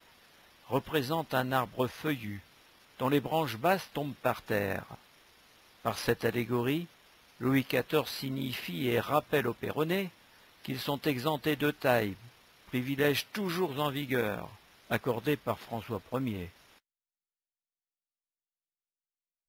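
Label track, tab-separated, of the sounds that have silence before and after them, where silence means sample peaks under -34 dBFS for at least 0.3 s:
0.710000	2.370000	sound
3.000000	4.940000	sound
5.850000	6.840000	sound
7.410000	10.070000	sound
10.650000	12.130000	sound
12.740000	14.460000	sound
14.910000	16.450000	sound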